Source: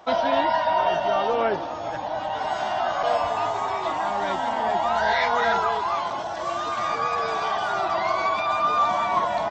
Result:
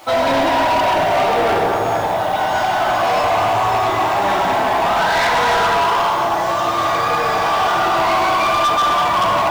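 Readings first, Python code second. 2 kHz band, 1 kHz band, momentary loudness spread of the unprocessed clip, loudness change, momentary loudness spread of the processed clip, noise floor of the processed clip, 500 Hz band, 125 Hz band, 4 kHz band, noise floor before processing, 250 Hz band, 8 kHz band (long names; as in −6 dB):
+9.0 dB, +7.5 dB, 7 LU, +8.0 dB, 3 LU, −19 dBFS, +7.0 dB, +13.0 dB, +10.5 dB, −30 dBFS, +10.0 dB, can't be measured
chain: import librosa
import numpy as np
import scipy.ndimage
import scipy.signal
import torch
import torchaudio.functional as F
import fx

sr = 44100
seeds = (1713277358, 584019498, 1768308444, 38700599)

y = fx.quant_dither(x, sr, seeds[0], bits=8, dither='none')
y = fx.rev_fdn(y, sr, rt60_s=2.3, lf_ratio=1.0, hf_ratio=0.6, size_ms=54.0, drr_db=-6.0)
y = np.clip(y, -10.0 ** (-17.0 / 20.0), 10.0 ** (-17.0 / 20.0))
y = y * 10.0 ** (4.0 / 20.0)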